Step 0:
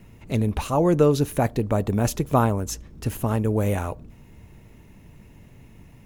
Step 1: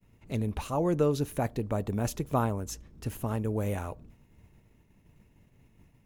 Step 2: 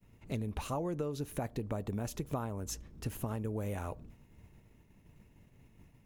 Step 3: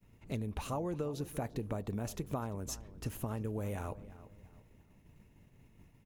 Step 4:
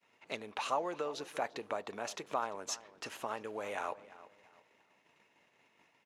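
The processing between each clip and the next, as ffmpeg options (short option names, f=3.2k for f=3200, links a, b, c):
-af "agate=range=-33dB:threshold=-42dB:ratio=3:detection=peak,volume=-8dB"
-af "acompressor=threshold=-32dB:ratio=12"
-filter_complex "[0:a]asplit=2[a][b];[b]adelay=344,lowpass=f=2.8k:p=1,volume=-16dB,asplit=2[c][d];[d]adelay=344,lowpass=f=2.8k:p=1,volume=0.36,asplit=2[e][f];[f]adelay=344,lowpass=f=2.8k:p=1,volume=0.36[g];[a][c][e][g]amix=inputs=4:normalize=0,volume=-1dB"
-filter_complex "[0:a]asplit=2[a][b];[b]aeval=exprs='sgn(val(0))*max(abs(val(0))-0.00168,0)':c=same,volume=-7.5dB[c];[a][c]amix=inputs=2:normalize=0,highpass=730,lowpass=5.2k,volume=6dB"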